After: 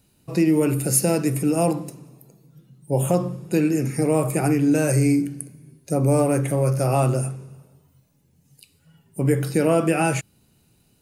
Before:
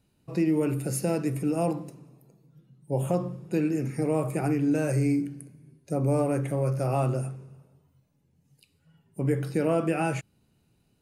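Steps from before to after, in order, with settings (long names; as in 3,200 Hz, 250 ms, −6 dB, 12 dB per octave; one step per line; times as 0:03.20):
high-shelf EQ 4,800 Hz +9.5 dB
level +6 dB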